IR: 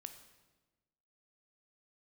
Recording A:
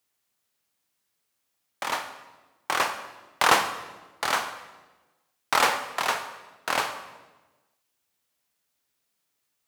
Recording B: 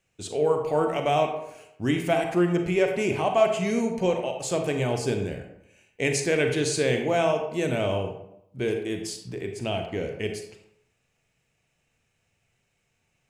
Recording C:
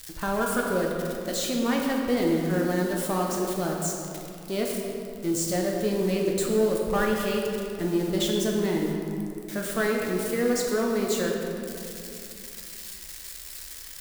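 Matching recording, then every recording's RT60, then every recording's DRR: A; 1.2, 0.75, 2.8 s; 7.5, 4.5, -1.0 dB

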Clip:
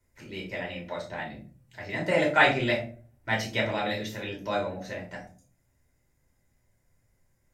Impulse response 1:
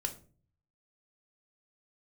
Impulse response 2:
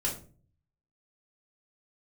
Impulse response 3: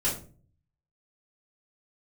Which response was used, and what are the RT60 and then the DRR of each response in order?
2; 0.40, 0.40, 0.40 s; 5.0, -3.5, -8.0 dB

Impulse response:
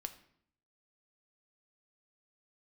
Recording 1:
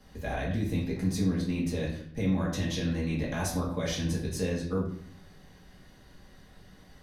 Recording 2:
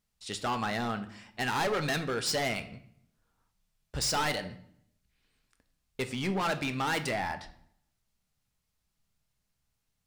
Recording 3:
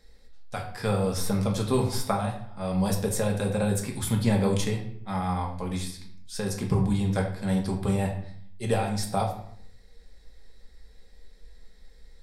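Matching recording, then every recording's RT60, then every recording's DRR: 2; 0.65, 0.65, 0.65 s; -5.5, 8.0, 0.5 dB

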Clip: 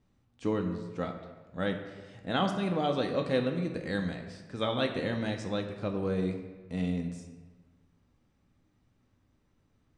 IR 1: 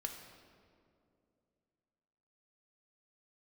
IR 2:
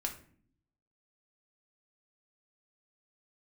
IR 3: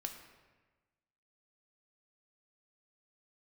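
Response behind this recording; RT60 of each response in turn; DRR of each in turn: 3; 2.5, 0.50, 1.3 s; 3.0, 1.5, 3.5 dB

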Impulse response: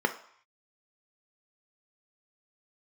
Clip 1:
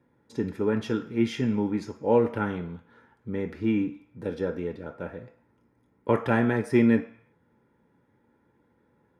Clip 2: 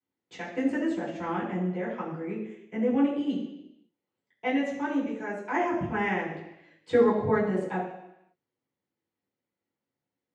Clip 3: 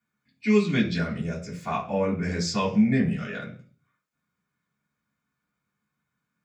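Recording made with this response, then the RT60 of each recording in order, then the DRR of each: 1; not exponential, 0.85 s, 0.40 s; 5.5, -9.5, -8.5 dB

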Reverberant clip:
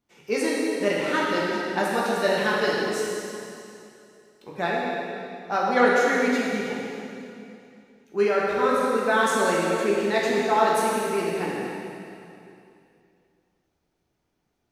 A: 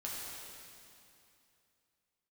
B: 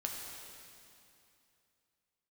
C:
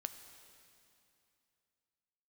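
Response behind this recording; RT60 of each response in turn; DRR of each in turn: A; 2.7, 2.7, 2.7 s; -6.0, -0.5, 8.5 dB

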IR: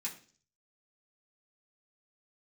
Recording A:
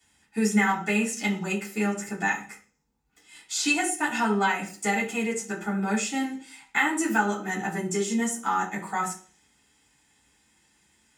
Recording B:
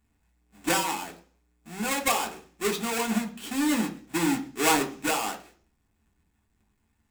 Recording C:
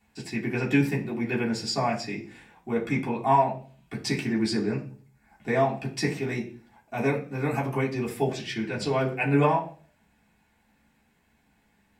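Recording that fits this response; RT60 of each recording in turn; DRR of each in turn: C; 0.45, 0.45, 0.45 s; -14.5, 1.0, -5.5 dB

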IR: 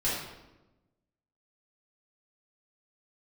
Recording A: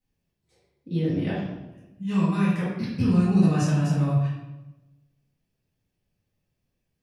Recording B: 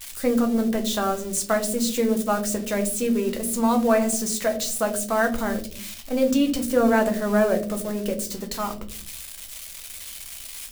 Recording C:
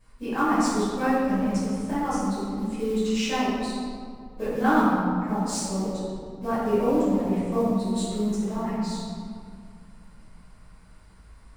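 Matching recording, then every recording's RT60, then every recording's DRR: A; 1.0 s, not exponential, 2.2 s; -10.0, 4.0, -13.5 dB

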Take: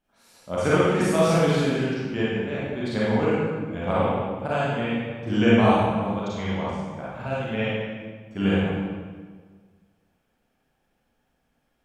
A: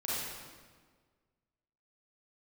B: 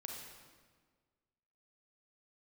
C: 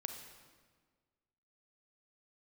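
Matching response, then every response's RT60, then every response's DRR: A; 1.6, 1.6, 1.6 s; -9.0, -0.5, 5.0 dB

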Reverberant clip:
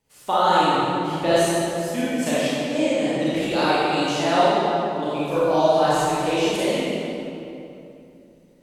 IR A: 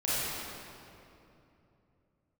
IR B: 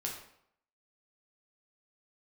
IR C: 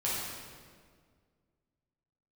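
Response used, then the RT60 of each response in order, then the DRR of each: A; 2.9, 0.70, 1.8 s; -10.5, -1.5, -8.0 dB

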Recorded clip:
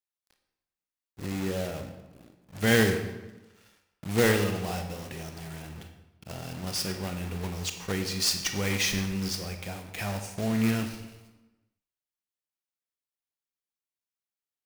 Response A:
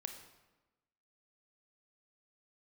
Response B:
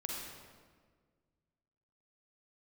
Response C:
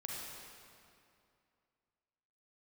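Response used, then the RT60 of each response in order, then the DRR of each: A; 1.1, 1.6, 2.5 s; 5.5, -2.5, -3.5 dB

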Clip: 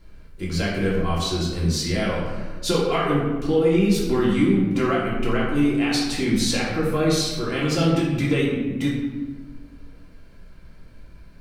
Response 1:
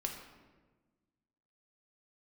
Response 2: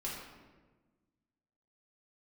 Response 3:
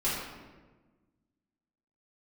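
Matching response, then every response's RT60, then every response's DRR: 2; 1.3, 1.3, 1.3 s; 1.5, -6.0, -10.5 dB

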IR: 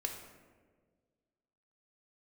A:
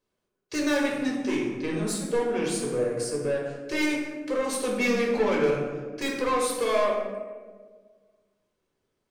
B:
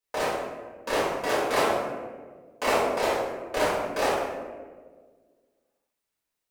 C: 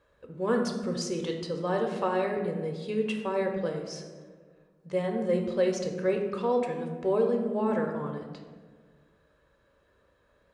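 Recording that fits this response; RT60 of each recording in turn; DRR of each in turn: C; 1.6, 1.6, 1.6 s; -3.0, -9.5, 2.5 dB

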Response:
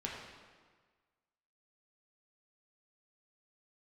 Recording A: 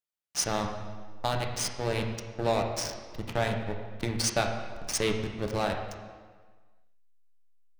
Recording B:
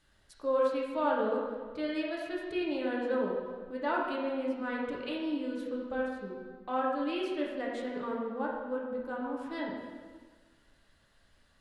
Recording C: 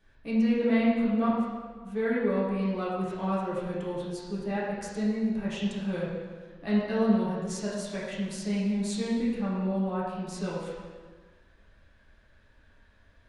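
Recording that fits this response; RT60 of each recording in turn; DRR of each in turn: B; 1.5, 1.5, 1.5 s; 2.5, -3.5, -9.5 dB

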